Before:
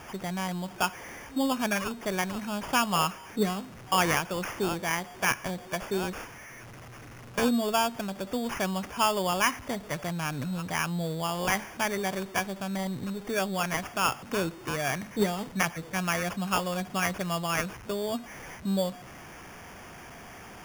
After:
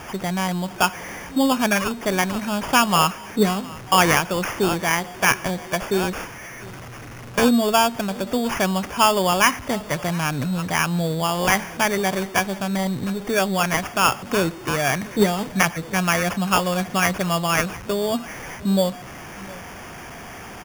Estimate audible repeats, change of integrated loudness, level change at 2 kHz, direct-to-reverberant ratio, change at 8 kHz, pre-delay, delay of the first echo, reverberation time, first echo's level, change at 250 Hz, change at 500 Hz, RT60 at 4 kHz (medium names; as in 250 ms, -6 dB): 1, +8.5 dB, +8.5 dB, no reverb, +8.5 dB, no reverb, 709 ms, no reverb, -21.5 dB, +8.5 dB, +8.5 dB, no reverb